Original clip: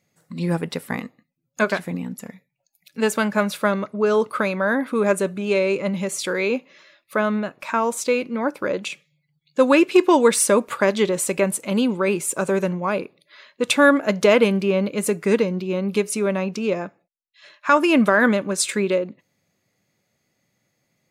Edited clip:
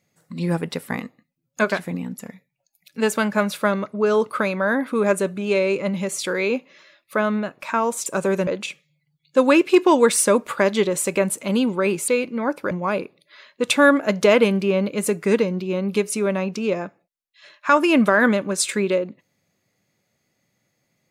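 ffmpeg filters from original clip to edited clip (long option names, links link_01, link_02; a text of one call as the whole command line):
ffmpeg -i in.wav -filter_complex "[0:a]asplit=5[link_01][link_02][link_03][link_04][link_05];[link_01]atrim=end=8.062[link_06];[link_02]atrim=start=12.298:end=12.712[link_07];[link_03]atrim=start=8.688:end=12.302[link_08];[link_04]atrim=start=8.058:end=8.692[link_09];[link_05]atrim=start=12.708[link_10];[link_06][link_07]acrossfade=duration=0.004:curve1=hsin:curve2=hsin[link_11];[link_11][link_08]acrossfade=duration=0.004:curve1=hsin:curve2=hsin[link_12];[link_12][link_09]acrossfade=duration=0.004:curve1=hsin:curve2=hsin[link_13];[link_13][link_10]acrossfade=duration=0.004:curve1=hsin:curve2=hsin" out.wav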